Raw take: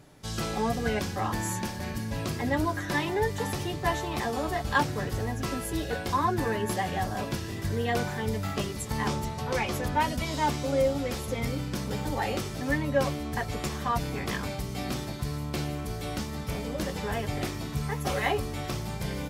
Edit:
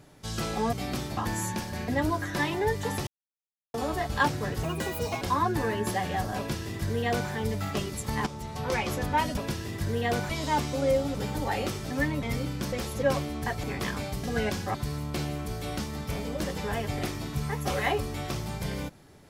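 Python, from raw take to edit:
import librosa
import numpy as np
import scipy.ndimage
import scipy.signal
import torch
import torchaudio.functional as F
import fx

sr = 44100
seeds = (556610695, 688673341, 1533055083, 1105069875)

y = fx.edit(x, sr, fx.swap(start_s=0.73, length_s=0.51, other_s=14.7, other_length_s=0.44),
    fx.cut(start_s=1.95, length_s=0.48),
    fx.silence(start_s=3.62, length_s=0.67),
    fx.speed_span(start_s=5.18, length_s=0.86, speed=1.47),
    fx.duplicate(start_s=7.21, length_s=0.92, to_s=10.2),
    fx.fade_in_from(start_s=9.09, length_s=0.37, floor_db=-13.5),
    fx.swap(start_s=11.05, length_s=0.3, other_s=11.85, other_length_s=1.08),
    fx.cut(start_s=13.54, length_s=0.56), tone=tone)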